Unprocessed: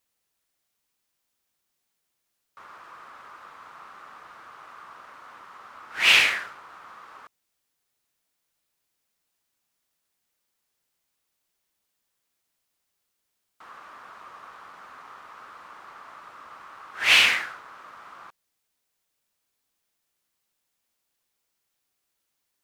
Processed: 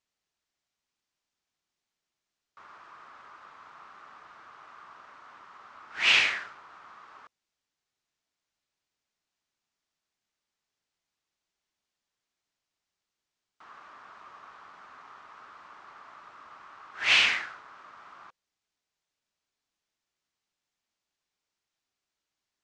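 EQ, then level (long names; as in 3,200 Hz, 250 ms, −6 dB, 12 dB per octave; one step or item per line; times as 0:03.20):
low-pass filter 7,000 Hz 24 dB per octave
notch filter 510 Hz, Q 12
−4.5 dB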